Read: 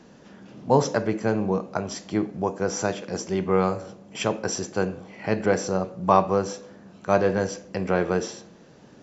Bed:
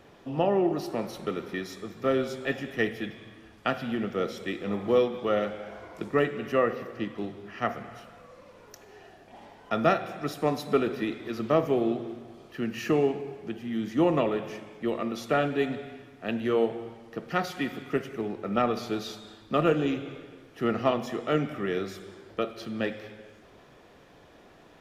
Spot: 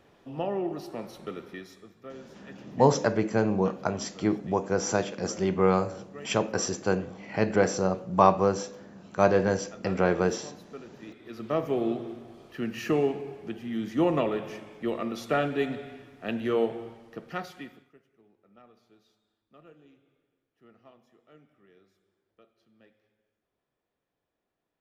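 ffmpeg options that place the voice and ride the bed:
ffmpeg -i stem1.wav -i stem2.wav -filter_complex "[0:a]adelay=2100,volume=-1dB[link_01];[1:a]volume=12.5dB,afade=type=out:start_time=1.39:duration=0.74:silence=0.211349,afade=type=in:start_time=10.98:duration=0.93:silence=0.11885,afade=type=out:start_time=16.79:duration=1.14:silence=0.0334965[link_02];[link_01][link_02]amix=inputs=2:normalize=0" out.wav

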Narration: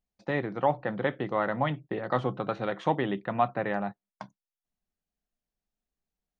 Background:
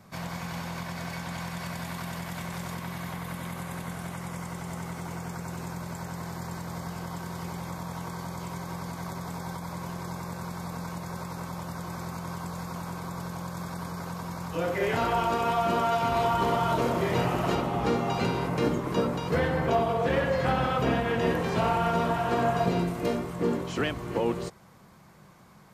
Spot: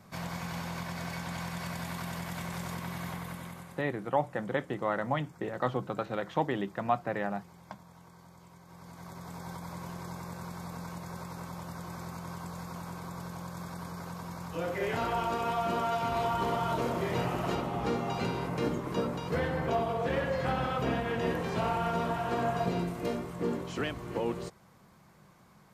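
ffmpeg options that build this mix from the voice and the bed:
ffmpeg -i stem1.wav -i stem2.wav -filter_complex "[0:a]adelay=3500,volume=-3dB[link_01];[1:a]volume=11.5dB,afade=type=out:start_time=3.09:duration=0.75:silence=0.149624,afade=type=in:start_time=8.65:duration=0.93:silence=0.211349[link_02];[link_01][link_02]amix=inputs=2:normalize=0" out.wav

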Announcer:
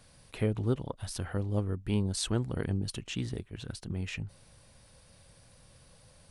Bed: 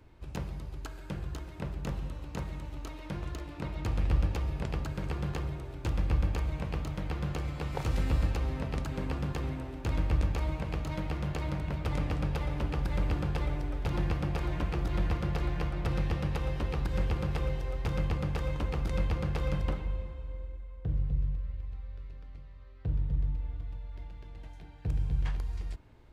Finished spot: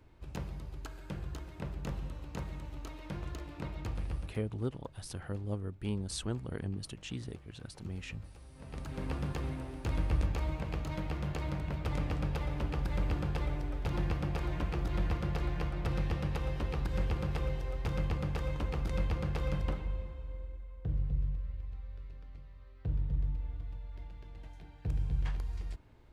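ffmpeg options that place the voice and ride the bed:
ffmpeg -i stem1.wav -i stem2.wav -filter_complex "[0:a]adelay=3950,volume=-6dB[link_01];[1:a]volume=17dB,afade=type=out:start_time=3.63:duration=0.79:silence=0.105925,afade=type=in:start_time=8.54:duration=0.57:silence=0.1[link_02];[link_01][link_02]amix=inputs=2:normalize=0" out.wav

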